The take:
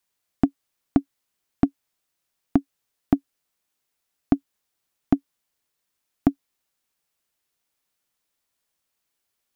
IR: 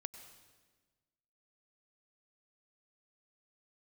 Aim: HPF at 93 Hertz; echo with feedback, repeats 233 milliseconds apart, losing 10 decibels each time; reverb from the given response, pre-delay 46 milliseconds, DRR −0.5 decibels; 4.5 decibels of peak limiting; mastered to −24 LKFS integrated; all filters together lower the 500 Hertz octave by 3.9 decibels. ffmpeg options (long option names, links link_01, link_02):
-filter_complex "[0:a]highpass=93,equalizer=frequency=500:width_type=o:gain=-7,alimiter=limit=-10.5dB:level=0:latency=1,aecho=1:1:233|466|699|932:0.316|0.101|0.0324|0.0104,asplit=2[link_01][link_02];[1:a]atrim=start_sample=2205,adelay=46[link_03];[link_02][link_03]afir=irnorm=-1:irlink=0,volume=4dB[link_04];[link_01][link_04]amix=inputs=2:normalize=0,volume=7dB"